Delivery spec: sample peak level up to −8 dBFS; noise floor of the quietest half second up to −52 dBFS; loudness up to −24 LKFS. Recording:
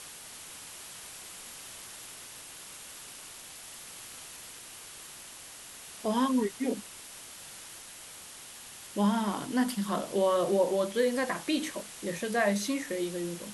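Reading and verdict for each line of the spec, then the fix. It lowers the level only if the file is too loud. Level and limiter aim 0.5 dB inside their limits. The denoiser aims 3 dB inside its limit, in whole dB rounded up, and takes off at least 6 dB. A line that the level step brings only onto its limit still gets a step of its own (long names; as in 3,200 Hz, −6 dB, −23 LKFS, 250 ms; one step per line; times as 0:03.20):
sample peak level −15.0 dBFS: in spec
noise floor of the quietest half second −47 dBFS: out of spec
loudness −31.5 LKFS: in spec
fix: broadband denoise 8 dB, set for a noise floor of −47 dBFS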